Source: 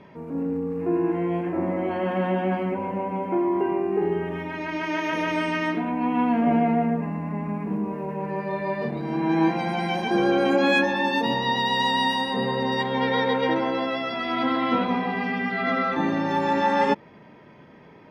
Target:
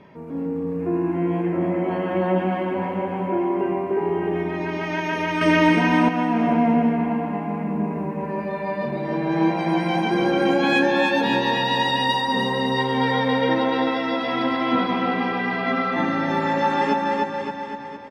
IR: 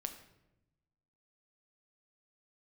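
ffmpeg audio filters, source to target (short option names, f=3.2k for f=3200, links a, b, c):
-filter_complex "[0:a]aecho=1:1:300|570|813|1032|1229:0.631|0.398|0.251|0.158|0.1,asettb=1/sr,asplit=3[a][b][c];[a]atrim=end=5.414[d];[b]atrim=start=5.41:end=6.09,asetpts=PTS-STARTPTS,afade=t=in:d=0.004:c=qsin,afade=t=out:st=0.676:d=0.004:c=qsin,acontrast=56[e];[c]atrim=start=6.086[f];[d][e]acrossfade=d=0.004:c1=hsin:c2=qsin[g];[g][f]acrossfade=d=0.004:c1=qsin:c2=hsin"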